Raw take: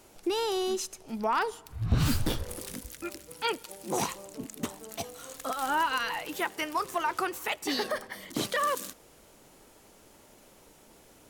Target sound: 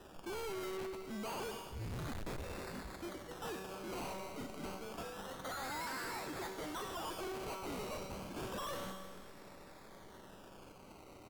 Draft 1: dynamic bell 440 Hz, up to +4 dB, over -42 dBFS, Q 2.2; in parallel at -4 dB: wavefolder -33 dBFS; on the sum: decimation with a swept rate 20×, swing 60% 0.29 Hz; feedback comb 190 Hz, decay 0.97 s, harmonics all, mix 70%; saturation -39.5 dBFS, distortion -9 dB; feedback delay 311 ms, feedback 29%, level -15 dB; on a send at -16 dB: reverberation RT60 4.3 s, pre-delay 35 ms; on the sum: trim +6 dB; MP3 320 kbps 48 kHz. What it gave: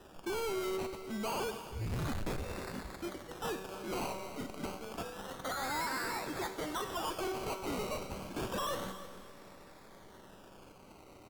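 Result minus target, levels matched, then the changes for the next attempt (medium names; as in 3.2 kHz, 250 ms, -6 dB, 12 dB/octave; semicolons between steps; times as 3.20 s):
wavefolder: distortion +20 dB; saturation: distortion -5 dB
change: wavefolder -24.5 dBFS; change: saturation -47 dBFS, distortion -3 dB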